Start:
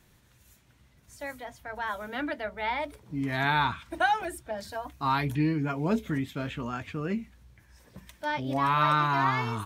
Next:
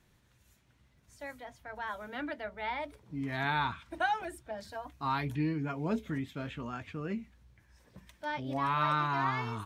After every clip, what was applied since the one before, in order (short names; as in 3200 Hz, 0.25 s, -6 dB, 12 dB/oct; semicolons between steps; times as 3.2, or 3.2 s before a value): high shelf 9300 Hz -7.5 dB; gain -5.5 dB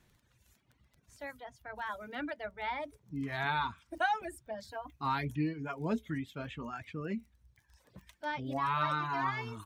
crackle 14/s -47 dBFS; reverb removal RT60 1.2 s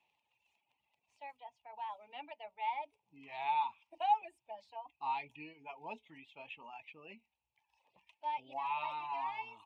double band-pass 1500 Hz, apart 1.6 oct; gain +4 dB